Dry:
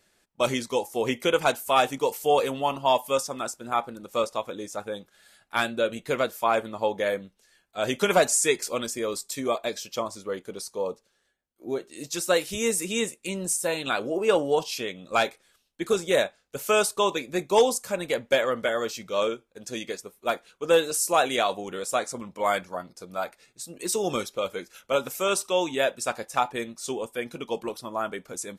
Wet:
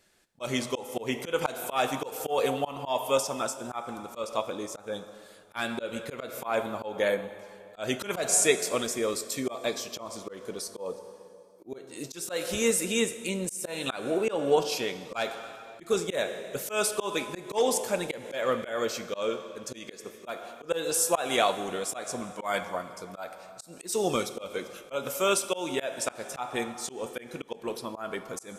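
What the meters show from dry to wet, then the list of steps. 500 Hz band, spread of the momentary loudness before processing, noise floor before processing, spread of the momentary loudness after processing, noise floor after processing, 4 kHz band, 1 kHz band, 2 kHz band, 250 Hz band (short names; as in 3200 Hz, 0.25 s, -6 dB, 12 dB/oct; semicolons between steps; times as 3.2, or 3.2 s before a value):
-4.0 dB, 12 LU, -70 dBFS, 15 LU, -51 dBFS, -3.0 dB, -6.0 dB, -4.0 dB, -2.0 dB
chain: plate-style reverb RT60 2.4 s, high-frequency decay 0.85×, DRR 11.5 dB; auto swell 0.18 s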